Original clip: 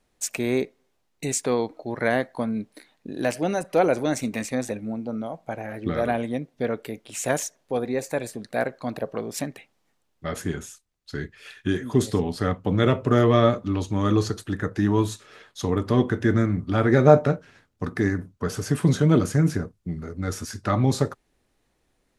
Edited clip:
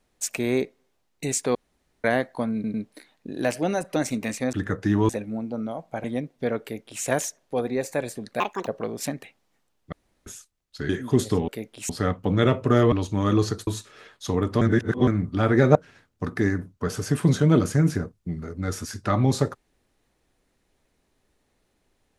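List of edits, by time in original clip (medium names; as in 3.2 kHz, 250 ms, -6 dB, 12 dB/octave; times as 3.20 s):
1.55–2.04 s: room tone
2.54 s: stutter 0.10 s, 3 plays
3.76–4.07 s: delete
5.59–6.22 s: delete
6.80–7.21 s: copy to 12.30 s
8.58–9.01 s: speed 158%
10.26–10.60 s: room tone
11.23–11.71 s: delete
13.33–13.71 s: delete
14.46–15.02 s: move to 4.64 s
15.96–16.42 s: reverse
17.10–17.35 s: delete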